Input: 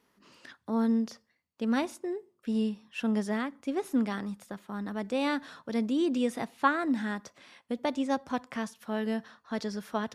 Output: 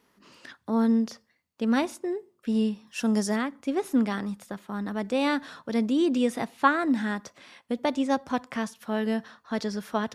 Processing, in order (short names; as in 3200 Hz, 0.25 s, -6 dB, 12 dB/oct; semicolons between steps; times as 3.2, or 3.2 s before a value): 2.87–3.36 resonant high shelf 4200 Hz +8 dB, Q 1.5; gain +4 dB